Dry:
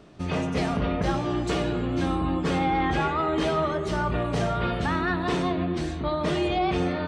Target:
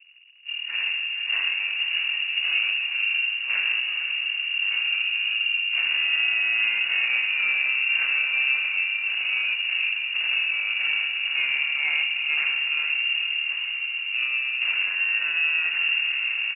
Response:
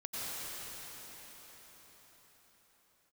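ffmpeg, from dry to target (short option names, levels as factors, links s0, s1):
-filter_complex "[0:a]equalizer=f=89:t=o:w=1.7:g=-7.5,acrusher=bits=9:dc=4:mix=0:aa=0.000001,adynamicsmooth=sensitivity=4.5:basefreq=1000,asplit=2[s0][s1];[s1]adelay=198.3,volume=0.355,highshelf=f=4000:g=-4.46[s2];[s0][s2]amix=inputs=2:normalize=0,asplit=2[s3][s4];[1:a]atrim=start_sample=2205[s5];[s4][s5]afir=irnorm=-1:irlink=0,volume=0.282[s6];[s3][s6]amix=inputs=2:normalize=0,asetrate=18846,aresample=44100,lowpass=f=2500:t=q:w=0.5098,lowpass=f=2500:t=q:w=0.6013,lowpass=f=2500:t=q:w=0.9,lowpass=f=2500:t=q:w=2.563,afreqshift=-2900"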